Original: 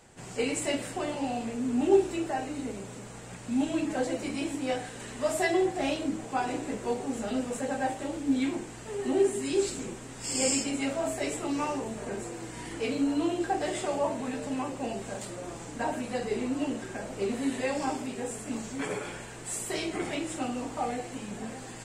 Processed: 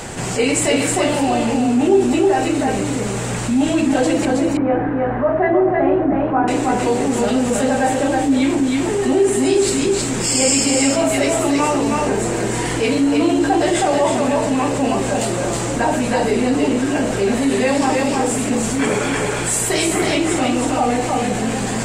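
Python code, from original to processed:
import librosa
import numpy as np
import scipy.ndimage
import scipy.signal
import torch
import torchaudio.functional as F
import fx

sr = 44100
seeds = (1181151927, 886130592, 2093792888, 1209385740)

y = fx.lowpass(x, sr, hz=1600.0, slope=24, at=(4.25, 6.48))
y = y + 10.0 ** (-4.0 / 20.0) * np.pad(y, (int(318 * sr / 1000.0), 0))[:len(y)]
y = fx.env_flatten(y, sr, amount_pct=50)
y = y * librosa.db_to_amplitude(6.5)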